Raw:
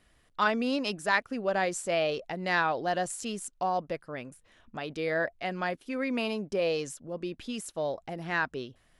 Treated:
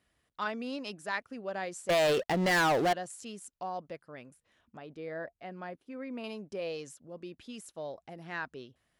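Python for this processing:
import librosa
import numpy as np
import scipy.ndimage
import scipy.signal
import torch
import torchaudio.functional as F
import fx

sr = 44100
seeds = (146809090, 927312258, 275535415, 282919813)

y = scipy.signal.sosfilt(scipy.signal.butter(2, 58.0, 'highpass', fs=sr, output='sos'), x)
y = fx.leveller(y, sr, passes=5, at=(1.89, 2.93))
y = fx.high_shelf(y, sr, hz=2000.0, db=-11.5, at=(4.77, 6.24))
y = y * 10.0 ** (-8.5 / 20.0)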